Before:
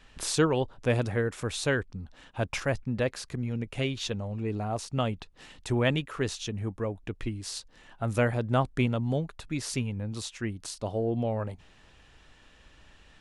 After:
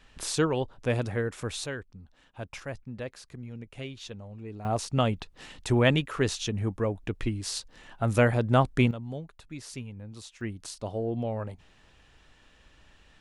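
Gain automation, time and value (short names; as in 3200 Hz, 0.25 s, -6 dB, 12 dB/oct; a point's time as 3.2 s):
-1.5 dB
from 1.66 s -9 dB
from 4.65 s +3.5 dB
from 8.91 s -8.5 dB
from 10.41 s -2 dB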